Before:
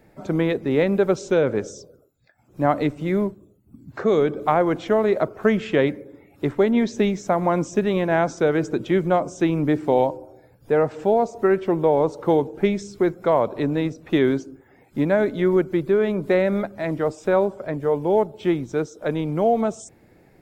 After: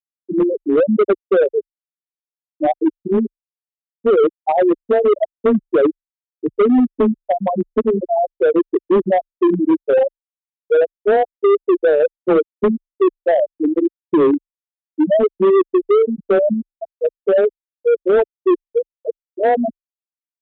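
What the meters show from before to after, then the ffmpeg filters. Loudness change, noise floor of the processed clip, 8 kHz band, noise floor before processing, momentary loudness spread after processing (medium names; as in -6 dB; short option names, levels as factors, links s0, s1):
+4.5 dB, under -85 dBFS, no reading, -56 dBFS, 8 LU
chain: -af "afftfilt=real='re*gte(hypot(re,im),0.708)':imag='im*gte(hypot(re,im),0.708)':win_size=1024:overlap=0.75,afreqshift=18,adynamicequalizer=threshold=0.0251:dfrequency=350:dqfactor=1.1:tfrequency=350:tqfactor=1.1:attack=5:release=100:ratio=0.375:range=3:mode=boostabove:tftype=bell,asoftclip=type=hard:threshold=0.2,aresample=8000,aresample=44100,volume=1.68"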